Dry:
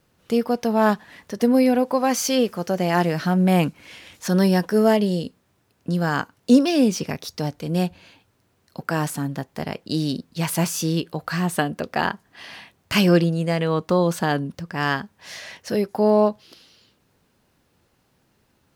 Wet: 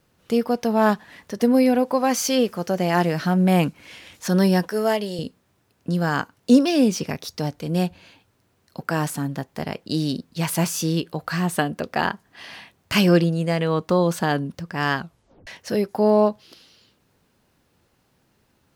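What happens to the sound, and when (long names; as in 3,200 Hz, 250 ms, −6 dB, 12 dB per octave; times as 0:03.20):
0:04.68–0:05.19: high-pass filter 590 Hz 6 dB per octave
0:14.97: tape stop 0.50 s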